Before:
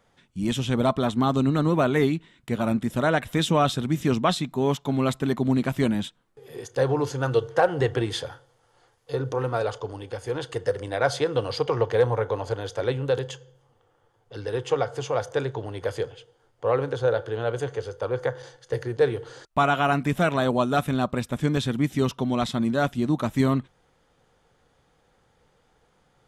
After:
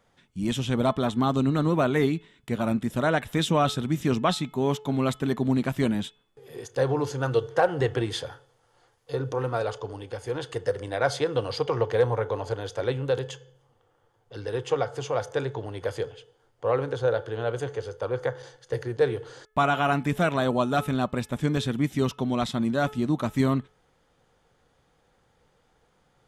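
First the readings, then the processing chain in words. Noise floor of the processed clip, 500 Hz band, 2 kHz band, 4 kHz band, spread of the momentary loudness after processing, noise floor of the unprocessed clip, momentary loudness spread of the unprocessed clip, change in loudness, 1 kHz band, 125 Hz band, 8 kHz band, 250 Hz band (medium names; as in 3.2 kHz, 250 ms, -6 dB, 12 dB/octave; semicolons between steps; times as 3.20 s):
-67 dBFS, -1.5 dB, -1.5 dB, -1.5 dB, 10 LU, -65 dBFS, 10 LU, -1.5 dB, -1.5 dB, -1.5 dB, -1.5 dB, -1.5 dB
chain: de-hum 430.1 Hz, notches 8; trim -1.5 dB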